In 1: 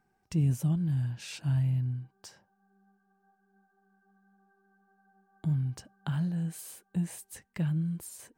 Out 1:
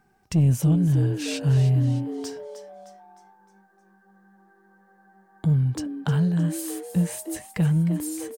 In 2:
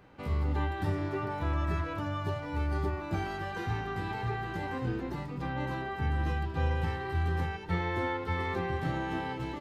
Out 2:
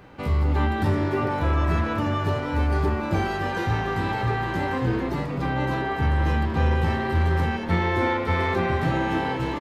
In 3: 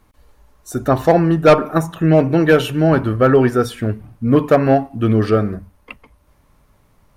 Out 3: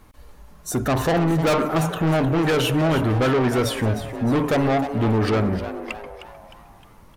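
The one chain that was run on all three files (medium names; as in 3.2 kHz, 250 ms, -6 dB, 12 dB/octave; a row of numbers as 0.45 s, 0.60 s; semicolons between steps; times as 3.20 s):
in parallel at -1 dB: peak limiter -15 dBFS; on the sum: saturation -16.5 dBFS; frequency-shifting echo 308 ms, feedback 47%, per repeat +150 Hz, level -12 dB; peak normalisation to -12 dBFS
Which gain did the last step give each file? +4.0 dB, +4.0 dB, -0.5 dB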